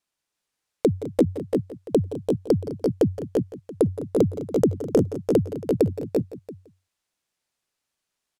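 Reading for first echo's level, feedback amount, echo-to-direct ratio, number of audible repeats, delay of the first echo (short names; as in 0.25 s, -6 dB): -16.0 dB, no steady repeat, -2.0 dB, 6, 0.169 s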